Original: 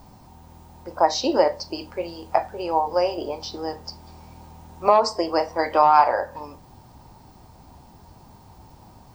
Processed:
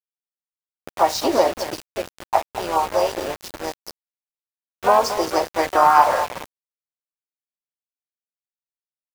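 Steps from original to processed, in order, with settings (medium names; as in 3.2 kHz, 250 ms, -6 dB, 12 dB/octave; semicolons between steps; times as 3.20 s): harmony voices +3 st -5 dB, +7 st -16 dB; delay 225 ms -11 dB; small samples zeroed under -26 dBFS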